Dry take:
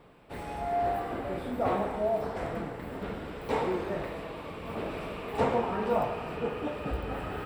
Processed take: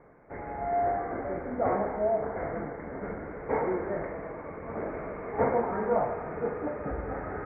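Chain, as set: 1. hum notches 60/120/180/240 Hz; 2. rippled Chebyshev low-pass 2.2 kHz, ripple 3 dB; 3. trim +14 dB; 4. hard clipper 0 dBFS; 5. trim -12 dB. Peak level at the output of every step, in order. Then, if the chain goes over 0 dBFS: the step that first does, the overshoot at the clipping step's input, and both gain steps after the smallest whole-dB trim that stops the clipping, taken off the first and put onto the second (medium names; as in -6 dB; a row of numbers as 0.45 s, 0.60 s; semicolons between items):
-14.5 dBFS, -15.5 dBFS, -1.5 dBFS, -1.5 dBFS, -13.5 dBFS; nothing clips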